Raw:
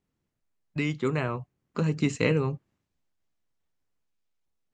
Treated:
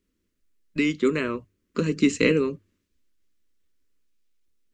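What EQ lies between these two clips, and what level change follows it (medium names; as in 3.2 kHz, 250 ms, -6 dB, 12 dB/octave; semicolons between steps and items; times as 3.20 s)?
bass shelf 180 Hz +4.5 dB; hum notches 50/100 Hz; static phaser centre 320 Hz, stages 4; +6.5 dB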